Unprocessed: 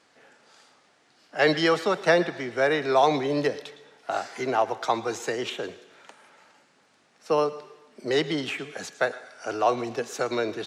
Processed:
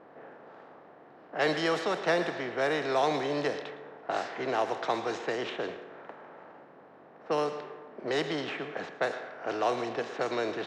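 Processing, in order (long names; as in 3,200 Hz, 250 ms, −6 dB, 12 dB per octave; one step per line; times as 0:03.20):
compressor on every frequency bin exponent 0.6
low-pass that shuts in the quiet parts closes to 920 Hz, open at −15 dBFS
level −9 dB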